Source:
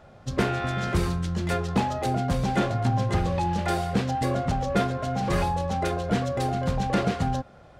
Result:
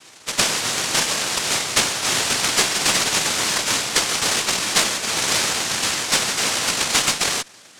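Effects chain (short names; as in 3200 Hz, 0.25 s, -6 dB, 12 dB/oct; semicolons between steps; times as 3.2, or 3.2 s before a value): formant shift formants +3 st; noise vocoder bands 1; added harmonics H 8 -29 dB, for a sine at -6 dBFS; gain +5 dB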